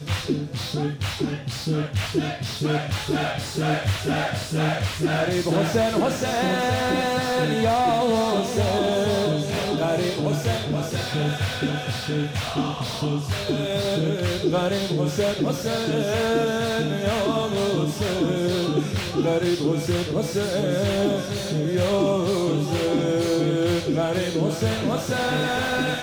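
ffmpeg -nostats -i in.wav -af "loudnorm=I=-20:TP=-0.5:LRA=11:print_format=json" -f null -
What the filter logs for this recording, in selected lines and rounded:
"input_i" : "-23.5",
"input_tp" : "-11.3",
"input_lra" : "3.4",
"input_thresh" : "-33.5",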